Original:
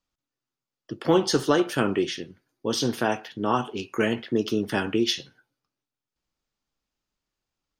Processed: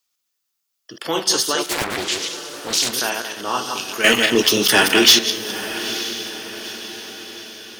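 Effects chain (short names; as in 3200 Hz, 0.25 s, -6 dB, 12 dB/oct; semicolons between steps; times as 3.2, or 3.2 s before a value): regenerating reverse delay 0.104 s, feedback 48%, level -4.5 dB; tilt +4.5 dB/oct; in parallel at -1 dB: limiter -12 dBFS, peak gain reduction 11 dB; 4.04–5.19 on the sum: sample leveller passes 3; on a send: diffused feedback echo 0.909 s, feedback 50%, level -12 dB; 1.65–2.93 on the sum: Doppler distortion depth 0.62 ms; gain -4 dB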